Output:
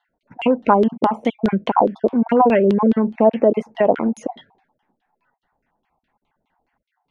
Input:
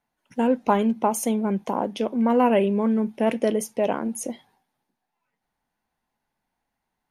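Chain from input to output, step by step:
time-frequency cells dropped at random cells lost 26%
downward compressor 2.5 to 1, threshold −23 dBFS, peak gain reduction 6.5 dB
auto-filter low-pass saw down 4.8 Hz 350–3,700 Hz
level +8.5 dB

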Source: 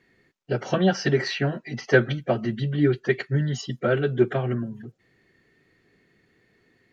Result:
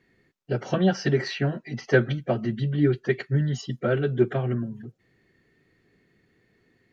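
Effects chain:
low-shelf EQ 360 Hz +4.5 dB
level −3.5 dB

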